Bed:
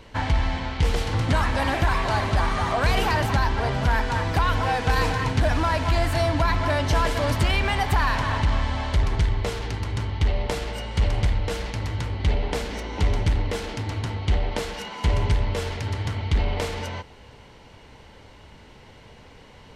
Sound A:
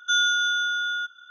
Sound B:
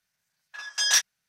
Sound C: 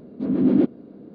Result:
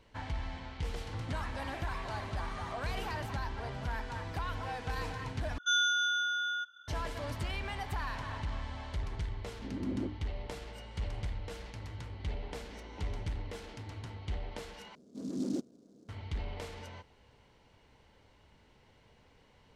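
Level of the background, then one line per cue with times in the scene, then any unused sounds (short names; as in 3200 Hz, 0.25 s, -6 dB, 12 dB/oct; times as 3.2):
bed -15.5 dB
5.58 replace with A -7 dB
9.42 add C -17.5 dB + notches 60/120/180/240/300/360/420/480 Hz
14.95 replace with C -17 dB + noise-modulated delay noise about 5200 Hz, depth 0.045 ms
not used: B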